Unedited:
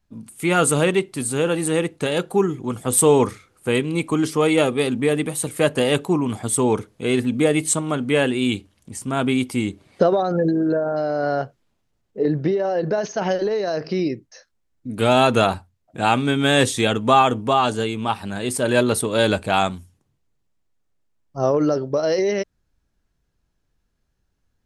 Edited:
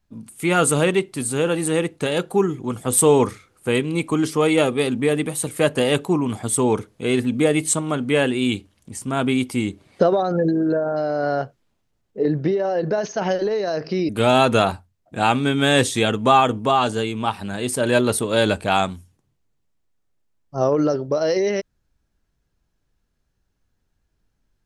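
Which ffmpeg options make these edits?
-filter_complex "[0:a]asplit=2[a][b];[a]atrim=end=14.092[c];[b]atrim=start=14.908[d];[c][d]acrossfade=d=0.004:c1=hsin:c2=hsin"

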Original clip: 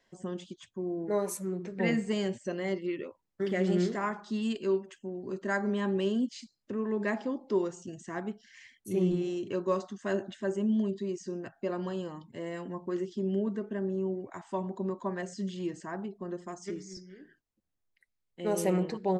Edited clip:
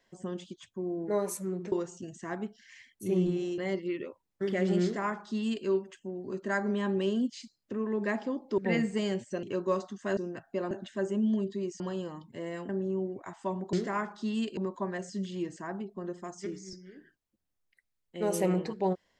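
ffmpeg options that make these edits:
-filter_complex "[0:a]asplit=11[a][b][c][d][e][f][g][h][i][j][k];[a]atrim=end=1.722[l];[b]atrim=start=7.568:end=9.432[m];[c]atrim=start=2.568:end=7.572[n];[d]atrim=start=1.718:end=2.572[o];[e]atrim=start=9.428:end=10.172[p];[f]atrim=start=11.258:end=11.802[q];[g]atrim=start=10.168:end=11.262[r];[h]atrim=start=11.798:end=12.692[s];[i]atrim=start=13.768:end=14.812[t];[j]atrim=start=3.808:end=4.652[u];[k]atrim=start=14.808[v];[l][m]acrossfade=d=0.004:c1=hsin:c2=hsin[w];[w][n]acrossfade=d=0.004:c1=hsin:c2=hsin[x];[x][o]acrossfade=d=0.004:c1=hsin:c2=hsin[y];[y][p]acrossfade=d=0.004:c1=hsin:c2=hsin[z];[z][q]acrossfade=d=0.004:c1=hsin:c2=hsin[aa];[aa][r]acrossfade=d=0.004:c1=hsin:c2=hsin[ab];[ab][s]acrossfade=d=0.004:c1=hsin:c2=hsin[ac];[ac][t]acrossfade=d=0.004:c1=hsin:c2=hsin[ad];[ad][u]acrossfade=d=0.004:c1=hsin:c2=hsin[ae];[ae][v]acrossfade=d=0.004:c1=hsin:c2=hsin"

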